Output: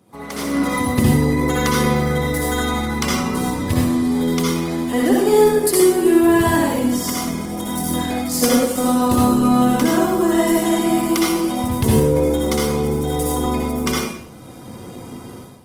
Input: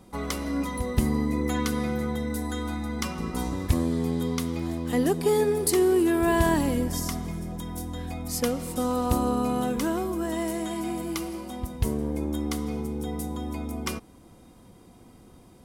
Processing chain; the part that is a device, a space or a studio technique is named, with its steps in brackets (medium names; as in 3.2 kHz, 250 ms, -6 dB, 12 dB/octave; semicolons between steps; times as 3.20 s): far-field microphone of a smart speaker (reverberation RT60 0.60 s, pre-delay 59 ms, DRR -4 dB; high-pass 95 Hz 24 dB/octave; level rider gain up to 16 dB; trim -3 dB; Opus 20 kbps 48 kHz)